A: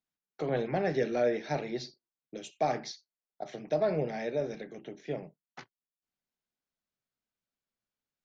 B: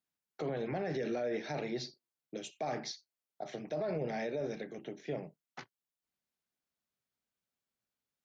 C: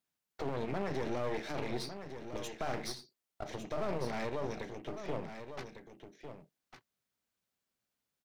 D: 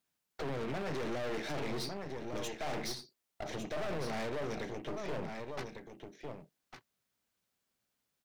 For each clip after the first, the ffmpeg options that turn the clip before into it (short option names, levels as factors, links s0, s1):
-af "highpass=41,alimiter=level_in=1.58:limit=0.0631:level=0:latency=1:release=26,volume=0.631"
-af "aeval=exprs='clip(val(0),-1,0.00282)':c=same,aecho=1:1:1153:0.335,volume=1.41"
-af "volume=56.2,asoftclip=hard,volume=0.0178,volume=1.5"